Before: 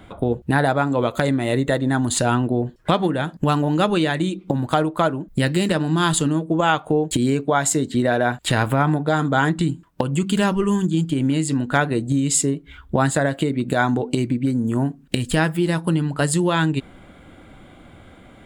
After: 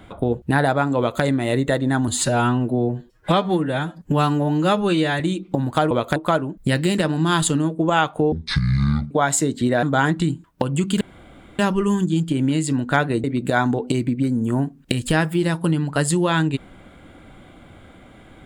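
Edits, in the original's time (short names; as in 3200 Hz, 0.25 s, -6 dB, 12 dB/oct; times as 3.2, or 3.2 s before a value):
0.98–1.23 copy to 4.87
2.08–4.16 stretch 1.5×
7.03–7.44 speed 52%
8.16–9.22 cut
10.4 insert room tone 0.58 s
12.05–13.47 cut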